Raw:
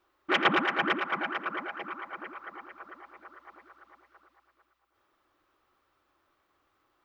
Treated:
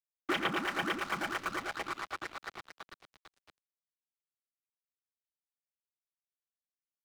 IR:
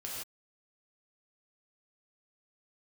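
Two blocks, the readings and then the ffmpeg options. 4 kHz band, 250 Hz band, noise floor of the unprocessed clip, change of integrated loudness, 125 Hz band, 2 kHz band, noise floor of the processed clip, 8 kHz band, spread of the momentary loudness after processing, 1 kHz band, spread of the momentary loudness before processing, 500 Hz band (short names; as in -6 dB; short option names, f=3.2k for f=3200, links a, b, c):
-5.0 dB, -4.5 dB, -75 dBFS, -6.0 dB, -2.5 dB, -6.0 dB, under -85 dBFS, n/a, 18 LU, -6.0 dB, 22 LU, -5.5 dB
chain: -filter_complex "[0:a]asplit=2[a][b];[b]adelay=28,volume=-13dB[c];[a][c]amix=inputs=2:normalize=0,aeval=exprs='sgn(val(0))*max(abs(val(0))-0.0075,0)':c=same,acrossover=split=230|4100[d][e][f];[d]acompressor=threshold=-50dB:ratio=4[g];[e]acompressor=threshold=-40dB:ratio=4[h];[f]acompressor=threshold=-52dB:ratio=4[i];[g][h][i]amix=inputs=3:normalize=0,volume=6.5dB"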